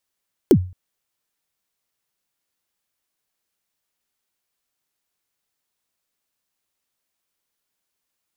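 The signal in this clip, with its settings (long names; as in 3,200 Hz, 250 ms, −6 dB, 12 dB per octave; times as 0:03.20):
synth kick length 0.22 s, from 440 Hz, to 91 Hz, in 69 ms, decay 0.37 s, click on, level −5 dB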